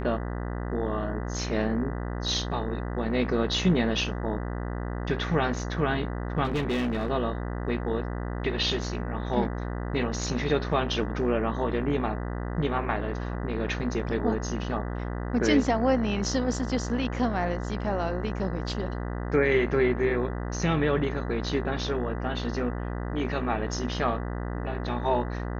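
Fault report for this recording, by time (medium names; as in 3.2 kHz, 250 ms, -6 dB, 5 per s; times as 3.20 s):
buzz 60 Hz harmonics 33 -32 dBFS
6.44–7.11 s: clipped -23.5 dBFS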